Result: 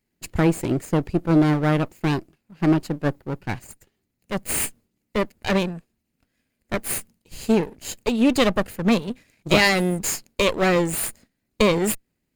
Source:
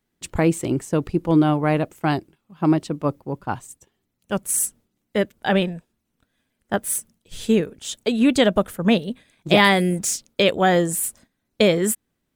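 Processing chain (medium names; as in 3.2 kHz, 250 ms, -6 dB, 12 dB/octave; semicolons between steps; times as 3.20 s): comb filter that takes the minimum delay 0.42 ms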